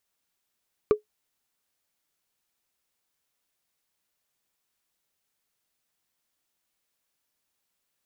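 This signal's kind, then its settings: wood hit, lowest mode 423 Hz, decay 0.12 s, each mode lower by 10 dB, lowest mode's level -11 dB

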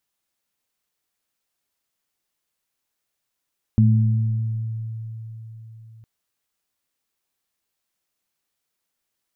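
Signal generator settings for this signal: sine partials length 2.26 s, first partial 112 Hz, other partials 217 Hz, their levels -3.5 dB, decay 4.29 s, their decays 1.61 s, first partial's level -12 dB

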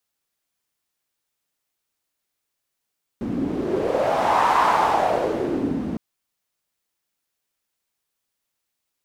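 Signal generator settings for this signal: wind-like swept noise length 2.76 s, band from 240 Hz, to 990 Hz, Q 3.9, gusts 1, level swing 7.5 dB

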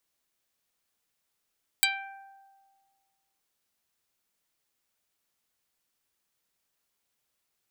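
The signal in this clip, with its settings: plucked string G5, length 1.57 s, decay 1.74 s, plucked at 0.15, dark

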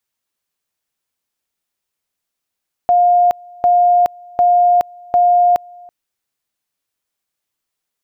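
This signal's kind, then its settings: two-level tone 708 Hz -8 dBFS, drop 27 dB, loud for 0.42 s, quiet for 0.33 s, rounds 4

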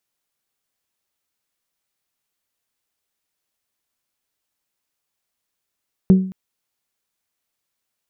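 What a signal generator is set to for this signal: glass hit bell, length 0.22 s, lowest mode 188 Hz, decay 0.49 s, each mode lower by 11 dB, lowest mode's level -5 dB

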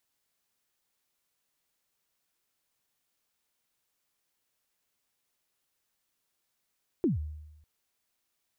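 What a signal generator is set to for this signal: kick drum length 0.60 s, from 390 Hz, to 76 Hz, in 0.142 s, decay 0.98 s, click off, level -21 dB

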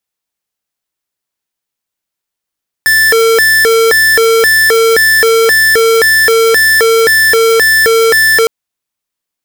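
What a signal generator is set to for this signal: siren hi-lo 453–1760 Hz 1.9/s square -7.5 dBFS 5.61 s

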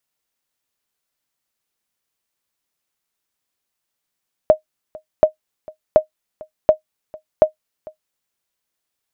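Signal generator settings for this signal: sonar ping 622 Hz, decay 0.11 s, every 0.73 s, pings 5, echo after 0.45 s, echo -24 dB -1 dBFS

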